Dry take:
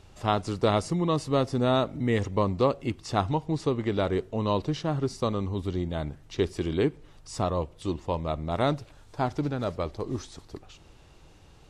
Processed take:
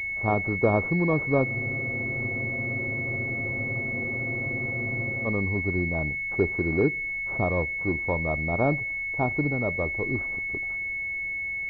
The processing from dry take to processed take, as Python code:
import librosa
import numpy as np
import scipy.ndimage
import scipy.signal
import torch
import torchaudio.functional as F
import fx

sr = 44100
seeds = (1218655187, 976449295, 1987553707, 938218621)

y = fx.spec_freeze(x, sr, seeds[0], at_s=1.46, hold_s=3.79)
y = fx.pwm(y, sr, carrier_hz=2200.0)
y = F.gain(torch.from_numpy(y), 2.0).numpy()